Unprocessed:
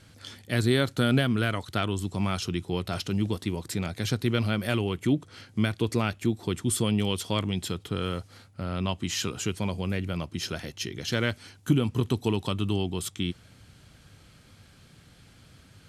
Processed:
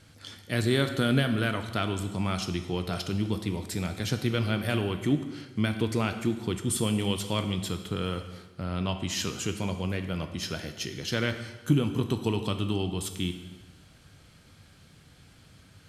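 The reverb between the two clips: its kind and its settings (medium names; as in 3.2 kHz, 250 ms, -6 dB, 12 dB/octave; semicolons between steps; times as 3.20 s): plate-style reverb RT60 1.2 s, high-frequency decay 0.9×, DRR 7 dB; trim -1.5 dB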